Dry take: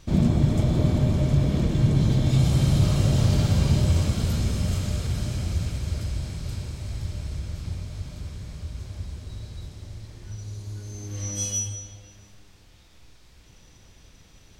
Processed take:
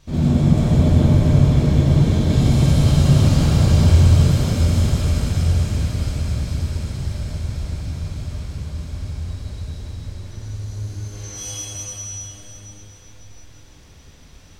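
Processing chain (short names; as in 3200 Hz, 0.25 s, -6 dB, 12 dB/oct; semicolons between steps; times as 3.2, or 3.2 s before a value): 11–11.75 HPF 580 Hz 12 dB/oct; plate-style reverb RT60 4.9 s, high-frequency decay 0.7×, DRR -9 dB; gain -3.5 dB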